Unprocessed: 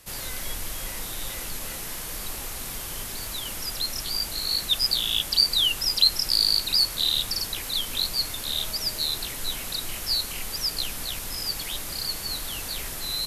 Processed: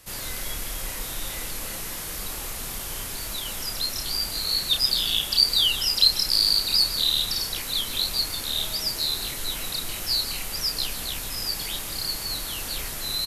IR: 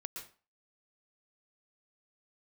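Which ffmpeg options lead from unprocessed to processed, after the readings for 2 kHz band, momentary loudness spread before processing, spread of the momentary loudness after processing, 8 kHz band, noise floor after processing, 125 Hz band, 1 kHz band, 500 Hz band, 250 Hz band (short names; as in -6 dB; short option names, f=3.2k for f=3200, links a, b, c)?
+1.0 dB, 13 LU, 13 LU, +1.0 dB, -34 dBFS, +1.0 dB, +1.0 dB, +1.0 dB, +1.0 dB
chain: -filter_complex "[0:a]asplit=2[a][b];[1:a]atrim=start_sample=2205,adelay=30[c];[b][c]afir=irnorm=-1:irlink=0,volume=-2.5dB[d];[a][d]amix=inputs=2:normalize=0,aresample=32000,aresample=44100"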